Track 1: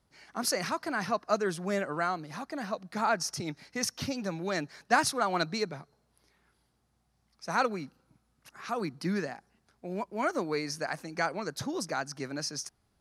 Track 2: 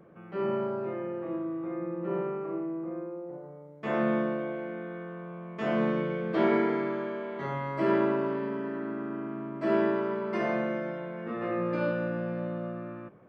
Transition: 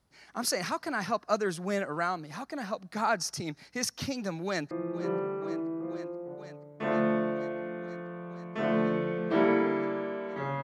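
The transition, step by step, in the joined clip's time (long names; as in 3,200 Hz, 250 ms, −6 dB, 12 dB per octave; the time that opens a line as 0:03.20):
track 1
0:04.45–0:04.71: delay throw 480 ms, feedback 85%, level −15.5 dB
0:04.71: continue with track 2 from 0:01.74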